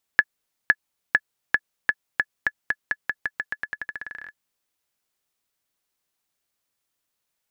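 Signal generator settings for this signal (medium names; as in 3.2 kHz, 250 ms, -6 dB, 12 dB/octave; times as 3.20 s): bouncing ball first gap 0.51 s, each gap 0.88, 1.71 kHz, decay 49 ms -2.5 dBFS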